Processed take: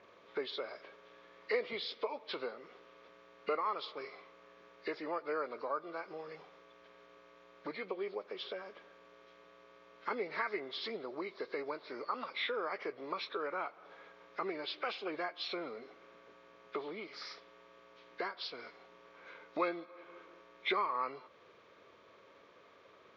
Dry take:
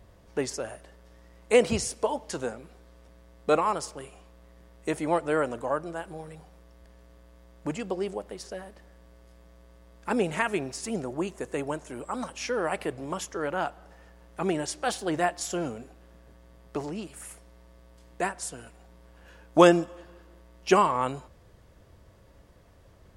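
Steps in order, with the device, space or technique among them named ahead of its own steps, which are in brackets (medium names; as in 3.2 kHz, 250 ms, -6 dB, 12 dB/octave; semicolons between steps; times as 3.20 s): hearing aid with frequency lowering (knee-point frequency compression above 1.4 kHz 1.5:1; compression 2.5:1, threshold -40 dBFS, peak gain reduction 19 dB; cabinet simulation 390–5700 Hz, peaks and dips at 420 Hz +5 dB, 760 Hz -5 dB, 1.2 kHz +8 dB, 2.2 kHz +8 dB, 3.5 kHz +4 dB, 5.1 kHz -4 dB)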